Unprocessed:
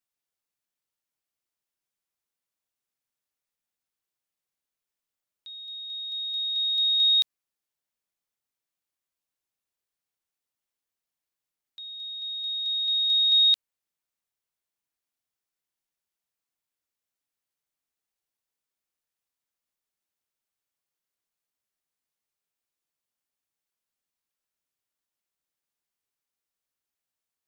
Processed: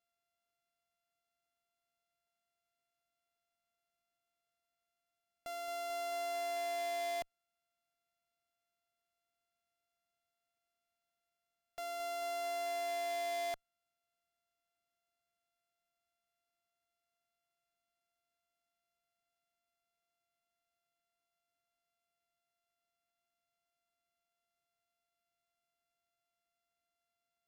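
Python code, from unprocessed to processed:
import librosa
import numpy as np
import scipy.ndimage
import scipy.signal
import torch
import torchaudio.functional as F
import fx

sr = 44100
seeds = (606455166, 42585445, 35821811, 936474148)

y = np.r_[np.sort(x[:len(x) // 64 * 64].reshape(-1, 64), axis=1).ravel(), x[len(x) // 64 * 64:]]
y = fx.tube_stage(y, sr, drive_db=37.0, bias=0.2)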